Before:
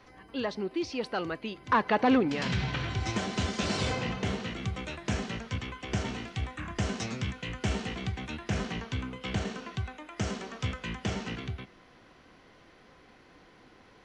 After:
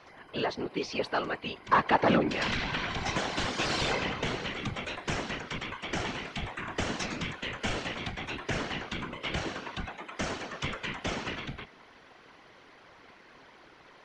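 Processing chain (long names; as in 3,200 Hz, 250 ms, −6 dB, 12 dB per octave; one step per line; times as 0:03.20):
mid-hump overdrive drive 9 dB, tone 4,300 Hz, clips at −15.5 dBFS
random phases in short frames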